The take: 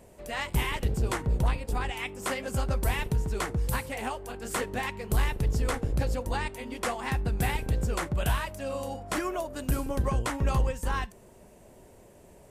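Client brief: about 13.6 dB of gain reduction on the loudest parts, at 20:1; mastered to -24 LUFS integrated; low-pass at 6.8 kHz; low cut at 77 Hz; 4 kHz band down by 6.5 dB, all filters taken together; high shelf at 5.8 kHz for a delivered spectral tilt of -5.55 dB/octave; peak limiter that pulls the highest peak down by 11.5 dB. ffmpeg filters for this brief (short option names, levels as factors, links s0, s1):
-af "highpass=77,lowpass=6800,equalizer=f=4000:t=o:g=-8,highshelf=f=5800:g=-3.5,acompressor=threshold=0.0126:ratio=20,volume=13.3,alimiter=limit=0.211:level=0:latency=1"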